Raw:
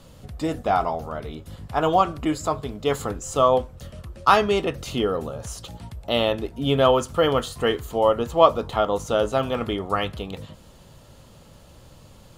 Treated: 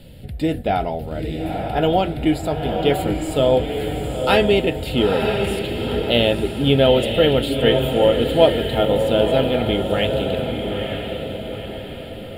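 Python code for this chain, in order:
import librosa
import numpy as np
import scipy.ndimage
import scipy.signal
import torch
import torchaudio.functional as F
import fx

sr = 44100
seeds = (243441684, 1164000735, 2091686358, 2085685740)

y = fx.fixed_phaser(x, sr, hz=2700.0, stages=4)
y = fx.echo_diffused(y, sr, ms=927, feedback_pct=48, wet_db=-4.5)
y = y * 10.0 ** (6.5 / 20.0)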